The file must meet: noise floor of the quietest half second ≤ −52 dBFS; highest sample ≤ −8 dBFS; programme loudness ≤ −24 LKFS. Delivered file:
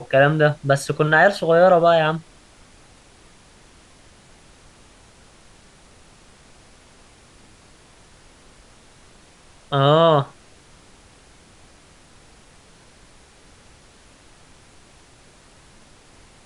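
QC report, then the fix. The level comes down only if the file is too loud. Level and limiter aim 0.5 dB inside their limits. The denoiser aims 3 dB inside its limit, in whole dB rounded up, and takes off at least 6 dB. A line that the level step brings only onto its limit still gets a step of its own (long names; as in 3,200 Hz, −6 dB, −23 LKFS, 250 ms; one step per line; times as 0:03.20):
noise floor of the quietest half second −50 dBFS: out of spec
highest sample −3.5 dBFS: out of spec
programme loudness −17.0 LKFS: out of spec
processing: level −7.5 dB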